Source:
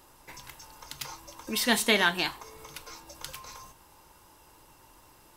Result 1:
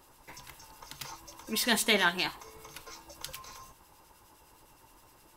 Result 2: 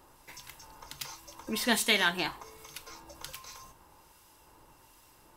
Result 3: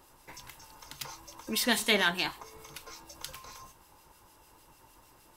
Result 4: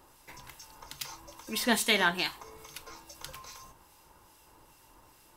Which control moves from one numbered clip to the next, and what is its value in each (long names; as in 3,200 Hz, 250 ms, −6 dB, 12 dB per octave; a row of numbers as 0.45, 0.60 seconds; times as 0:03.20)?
two-band tremolo in antiphase, speed: 9.7, 1.3, 6.6, 2.4 Hertz